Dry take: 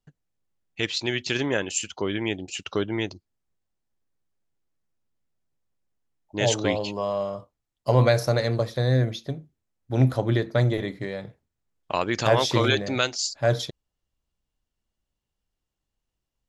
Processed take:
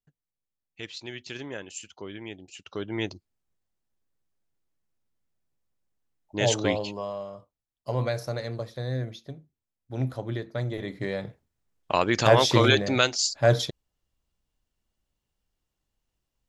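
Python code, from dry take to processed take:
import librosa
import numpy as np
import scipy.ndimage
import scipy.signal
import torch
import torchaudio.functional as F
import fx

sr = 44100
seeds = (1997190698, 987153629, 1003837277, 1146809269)

y = fx.gain(x, sr, db=fx.line((2.64, -12.0), (3.05, -1.0), (6.72, -1.0), (7.24, -9.0), (10.67, -9.0), (11.1, 2.0)))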